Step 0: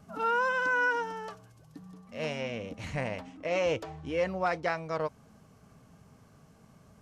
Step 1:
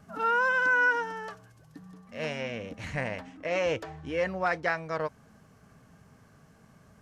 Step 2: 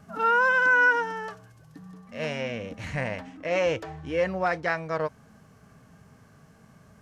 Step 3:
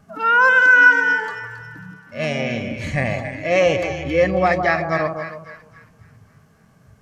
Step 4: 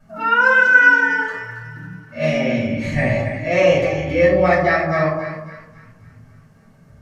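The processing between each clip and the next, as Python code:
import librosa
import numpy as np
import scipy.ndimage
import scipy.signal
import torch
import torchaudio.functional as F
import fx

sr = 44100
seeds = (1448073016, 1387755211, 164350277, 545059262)

y1 = fx.peak_eq(x, sr, hz=1700.0, db=7.0, octaves=0.5)
y2 = fx.hpss(y1, sr, part='harmonic', gain_db=4)
y3 = fx.echo_split(y2, sr, split_hz=1300.0, low_ms=155, high_ms=272, feedback_pct=52, wet_db=-6.5)
y3 = fx.noise_reduce_blind(y3, sr, reduce_db=10)
y3 = y3 * 10.0 ** (9.0 / 20.0)
y4 = fx.room_shoebox(y3, sr, seeds[0], volume_m3=360.0, walls='furnished', distance_m=7.2)
y4 = y4 * 10.0 ** (-10.0 / 20.0)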